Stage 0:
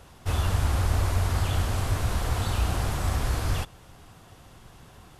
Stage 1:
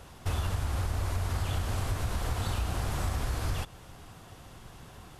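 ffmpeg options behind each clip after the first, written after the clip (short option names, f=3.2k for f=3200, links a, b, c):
-af "acompressor=threshold=-28dB:ratio=6,volume=1dB"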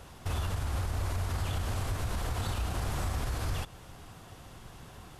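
-af "alimiter=limit=-24dB:level=0:latency=1:release=28"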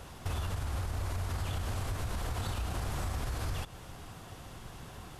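-af "acompressor=threshold=-35dB:ratio=2.5,volume=2dB"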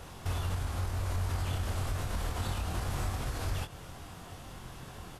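-filter_complex "[0:a]asplit=2[a][b];[b]adelay=23,volume=-5dB[c];[a][c]amix=inputs=2:normalize=0"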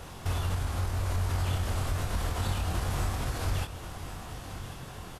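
-af "aecho=1:1:1086:0.251,volume=3dB"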